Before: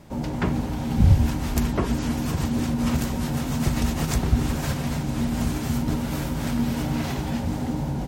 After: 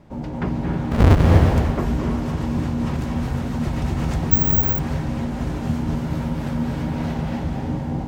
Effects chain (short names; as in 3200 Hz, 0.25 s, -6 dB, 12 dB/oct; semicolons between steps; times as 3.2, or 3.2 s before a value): 0.91–1.38 half-waves squared off; LPF 1900 Hz 6 dB/oct; reverb RT60 1.5 s, pre-delay 0.205 s, DRR 0.5 dB; 4.31–4.79 careless resampling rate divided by 2×, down filtered, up zero stuff; gain -1 dB